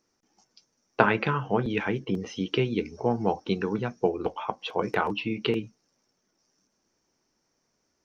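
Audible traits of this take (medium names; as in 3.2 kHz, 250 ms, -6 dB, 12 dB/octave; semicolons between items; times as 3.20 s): noise floor -76 dBFS; spectral tilt -4.5 dB/octave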